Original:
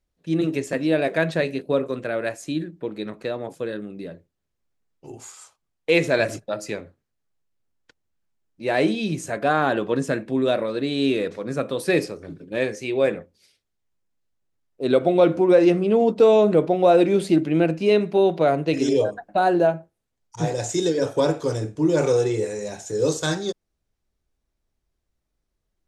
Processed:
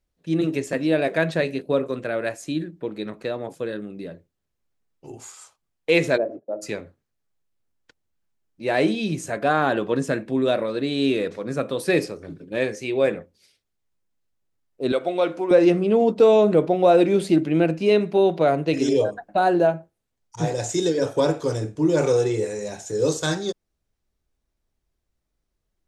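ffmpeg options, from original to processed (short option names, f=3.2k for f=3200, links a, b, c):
-filter_complex "[0:a]asplit=3[a][b][c];[a]afade=t=out:st=6.16:d=0.02[d];[b]asuperpass=centerf=420:order=4:qfactor=0.98,afade=t=in:st=6.16:d=0.02,afade=t=out:st=6.61:d=0.02[e];[c]afade=t=in:st=6.61:d=0.02[f];[d][e][f]amix=inputs=3:normalize=0,asettb=1/sr,asplit=3[g][h][i];[g]atrim=end=14.924[j];[h]atrim=start=14.92:end=15.51,asetpts=PTS-STARTPTS,afade=t=in:d=0.004:c=qsin,afade=t=out:st=0.586:d=0.004:c=qsin,highpass=f=800:p=1[k];[i]atrim=start=15.506[l];[j][k]acrossfade=d=0.004:c1=hsin:c2=qsin[m];[m][l]acrossfade=d=0.004:c1=qsin:c2=hsin"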